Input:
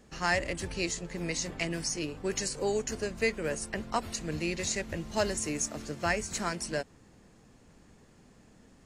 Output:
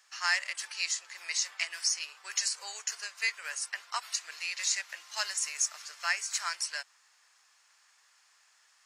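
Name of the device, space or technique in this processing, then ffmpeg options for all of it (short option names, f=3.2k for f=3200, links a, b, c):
headphones lying on a table: -af "highpass=f=1.1k:w=0.5412,highpass=f=1.1k:w=1.3066,equalizer=f=5.2k:t=o:w=0.53:g=5,volume=1.5dB"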